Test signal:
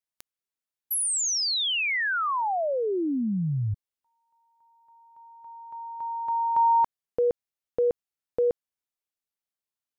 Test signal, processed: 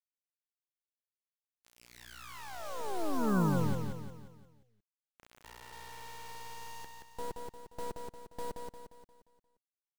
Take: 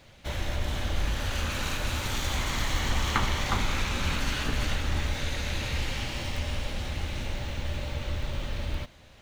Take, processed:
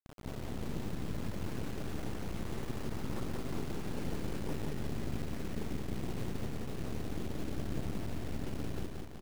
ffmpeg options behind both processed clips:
ffmpeg -i in.wav -af "aeval=exprs='0.1*(abs(mod(val(0)/0.1+3,4)-2)-1)':channel_layout=same,areverse,acompressor=threshold=-41dB:ratio=5:attack=1.2:release=23:knee=6:detection=rms,areverse,afwtdn=0.00447,bandpass=frequency=180:width_type=q:width=1.9:csg=0,aeval=exprs='val(0)+0.000316*(sin(2*PI*60*n/s)+sin(2*PI*2*60*n/s)/2+sin(2*PI*3*60*n/s)/3+sin(2*PI*4*60*n/s)/4+sin(2*PI*5*60*n/s)/5)':channel_layout=same,aeval=exprs='0.015*(cos(1*acos(clip(val(0)/0.015,-1,1)))-cos(1*PI/2))+0.00473*(cos(2*acos(clip(val(0)/0.015,-1,1)))-cos(2*PI/2))+0.00335*(cos(3*acos(clip(val(0)/0.015,-1,1)))-cos(3*PI/2))+0.000841*(cos(5*acos(clip(val(0)/0.015,-1,1)))-cos(5*PI/2))+0.00376*(cos(8*acos(clip(val(0)/0.015,-1,1)))-cos(8*PI/2))':channel_layout=same,acrusher=bits=9:mix=0:aa=0.000001,aecho=1:1:176|352|528|704|880|1056:0.596|0.274|0.126|0.058|0.0267|0.0123,volume=13dB" out.wav

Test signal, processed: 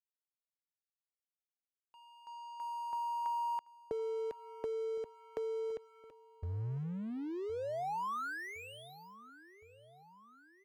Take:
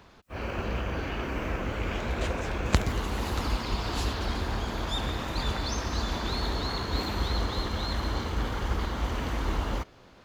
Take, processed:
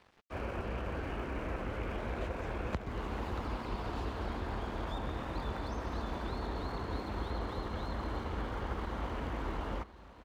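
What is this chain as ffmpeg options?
ffmpeg -i in.wav -filter_complex "[0:a]acrossover=split=120|1200[link_01][link_02][link_03];[link_01]acompressor=threshold=-35dB:ratio=4[link_04];[link_02]acompressor=threshold=-38dB:ratio=4[link_05];[link_03]acompressor=threshold=-48dB:ratio=4[link_06];[link_04][link_05][link_06]amix=inputs=3:normalize=0,bass=frequency=250:gain=-3,treble=frequency=4000:gain=-14,aeval=exprs='sgn(val(0))*max(abs(val(0))-0.00188,0)':channel_layout=same,aecho=1:1:1064|2128|3192|4256:0.126|0.0667|0.0354|0.0187,volume=1dB" out.wav

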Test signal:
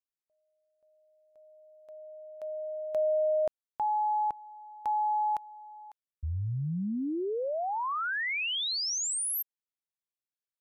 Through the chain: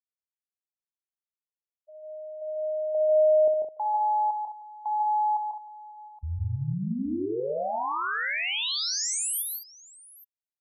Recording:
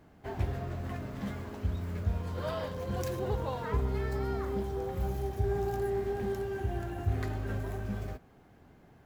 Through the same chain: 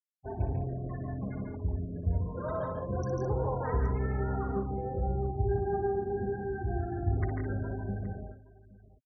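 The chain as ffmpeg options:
ffmpeg -i in.wav -filter_complex "[0:a]bandreject=frequency=209:width_type=h:width=4,bandreject=frequency=418:width_type=h:width=4,bandreject=frequency=627:width_type=h:width=4,afftfilt=real='re*gte(hypot(re,im),0.02)':imag='im*gte(hypot(re,im),0.02)':win_size=1024:overlap=0.75,asplit=2[link_01][link_02];[link_02]aecho=0:1:60|144|168|210|820:0.355|0.596|0.473|0.266|0.106[link_03];[link_01][link_03]amix=inputs=2:normalize=0" out.wav

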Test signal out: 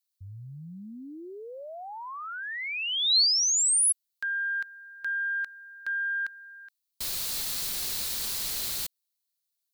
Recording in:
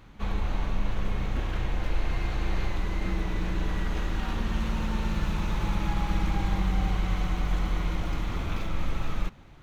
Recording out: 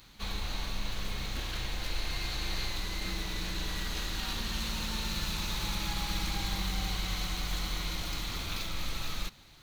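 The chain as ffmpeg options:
ffmpeg -i in.wav -af "aeval=exprs='0.2*(cos(1*acos(clip(val(0)/0.2,-1,1)))-cos(1*PI/2))+0.00251*(cos(2*acos(clip(val(0)/0.2,-1,1)))-cos(2*PI/2))':channel_layout=same,crystalizer=i=7:c=0,equalizer=frequency=4200:width=2.9:gain=9,volume=-8.5dB" out.wav

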